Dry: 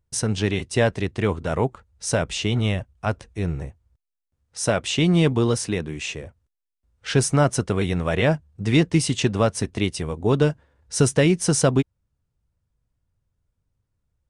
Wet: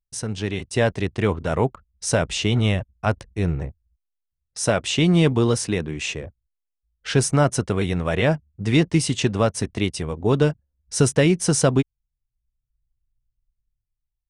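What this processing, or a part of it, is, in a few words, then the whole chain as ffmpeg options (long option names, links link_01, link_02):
voice memo with heavy noise removal: -af "anlmdn=0.0631,dynaudnorm=framelen=160:gausssize=9:maxgain=11.5dB,volume=-5dB"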